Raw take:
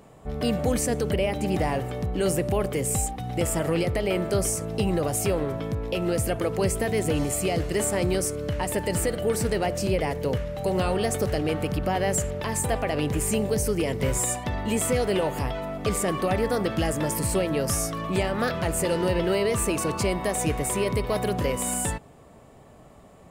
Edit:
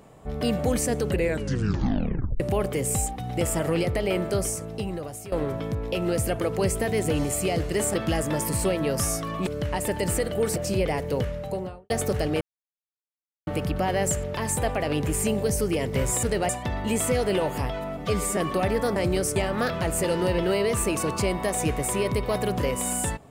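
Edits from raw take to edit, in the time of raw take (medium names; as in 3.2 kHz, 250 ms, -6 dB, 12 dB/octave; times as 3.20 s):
1.05 s: tape stop 1.35 s
4.17–5.32 s: fade out, to -16.5 dB
7.94–8.34 s: swap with 16.64–18.17 s
9.43–9.69 s: move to 14.30 s
10.43–11.03 s: studio fade out
11.54 s: insert silence 1.06 s
15.79–16.05 s: stretch 1.5×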